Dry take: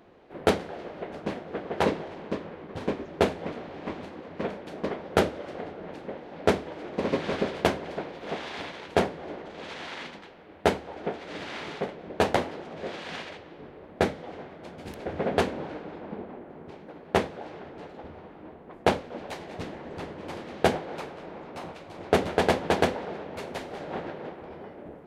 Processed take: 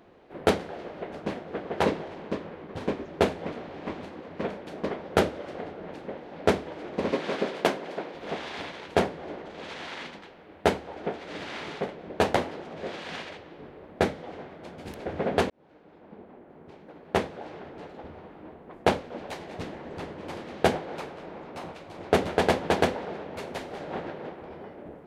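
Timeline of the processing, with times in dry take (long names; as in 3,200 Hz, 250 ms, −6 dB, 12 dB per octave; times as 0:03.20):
0:07.11–0:08.15: high-pass filter 210 Hz
0:15.50–0:17.51: fade in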